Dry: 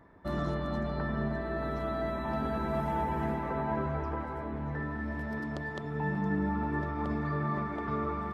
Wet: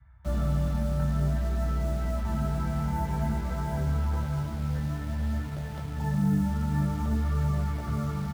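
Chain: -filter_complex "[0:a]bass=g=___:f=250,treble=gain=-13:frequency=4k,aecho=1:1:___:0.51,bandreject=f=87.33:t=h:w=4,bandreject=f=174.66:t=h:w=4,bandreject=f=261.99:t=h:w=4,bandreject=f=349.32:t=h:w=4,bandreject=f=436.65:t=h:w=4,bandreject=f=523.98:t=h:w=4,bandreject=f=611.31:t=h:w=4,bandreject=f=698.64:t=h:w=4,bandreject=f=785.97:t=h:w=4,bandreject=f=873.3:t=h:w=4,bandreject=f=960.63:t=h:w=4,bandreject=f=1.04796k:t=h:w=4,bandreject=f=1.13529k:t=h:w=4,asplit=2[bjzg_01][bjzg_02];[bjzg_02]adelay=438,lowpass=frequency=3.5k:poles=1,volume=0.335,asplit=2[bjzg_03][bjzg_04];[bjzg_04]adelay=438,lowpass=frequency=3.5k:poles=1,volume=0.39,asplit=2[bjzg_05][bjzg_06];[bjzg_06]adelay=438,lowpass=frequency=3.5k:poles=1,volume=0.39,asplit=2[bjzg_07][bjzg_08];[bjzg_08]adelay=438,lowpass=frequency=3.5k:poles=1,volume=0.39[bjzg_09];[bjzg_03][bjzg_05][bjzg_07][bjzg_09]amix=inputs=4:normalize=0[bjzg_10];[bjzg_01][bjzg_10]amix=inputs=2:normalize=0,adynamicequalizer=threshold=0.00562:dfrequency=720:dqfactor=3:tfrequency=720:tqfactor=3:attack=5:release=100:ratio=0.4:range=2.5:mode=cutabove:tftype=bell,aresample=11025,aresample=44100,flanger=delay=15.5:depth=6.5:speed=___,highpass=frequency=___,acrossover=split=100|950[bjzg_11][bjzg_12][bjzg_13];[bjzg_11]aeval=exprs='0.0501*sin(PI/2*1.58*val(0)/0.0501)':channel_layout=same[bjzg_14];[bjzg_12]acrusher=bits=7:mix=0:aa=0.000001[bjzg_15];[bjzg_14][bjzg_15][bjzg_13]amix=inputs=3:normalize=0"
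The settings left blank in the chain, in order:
9, 1.4, 0.53, 59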